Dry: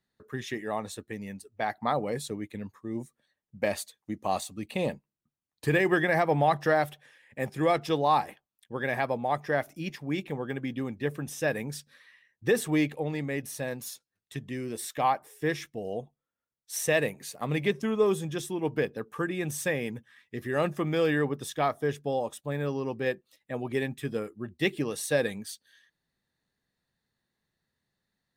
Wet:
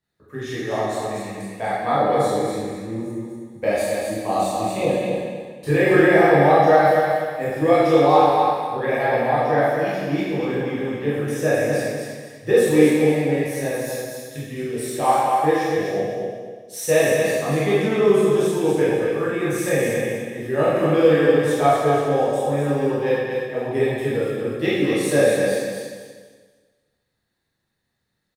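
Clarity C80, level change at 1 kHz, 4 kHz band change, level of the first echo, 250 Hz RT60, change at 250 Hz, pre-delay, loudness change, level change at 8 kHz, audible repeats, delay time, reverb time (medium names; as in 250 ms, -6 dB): -1.5 dB, +10.5 dB, +6.5 dB, -3.5 dB, 1.6 s, +10.0 dB, 8 ms, +10.5 dB, +6.5 dB, 1, 243 ms, 1.6 s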